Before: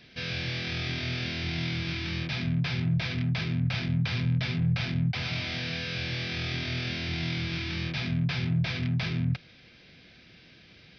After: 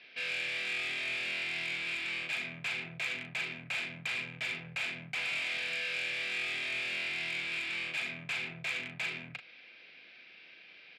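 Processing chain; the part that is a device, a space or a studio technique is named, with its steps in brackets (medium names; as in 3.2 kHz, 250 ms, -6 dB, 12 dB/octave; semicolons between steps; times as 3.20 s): intercom (band-pass 490–3800 Hz; peaking EQ 2.5 kHz +9 dB 0.53 oct; saturation -26 dBFS, distortion -17 dB; doubling 38 ms -7.5 dB); trim -3 dB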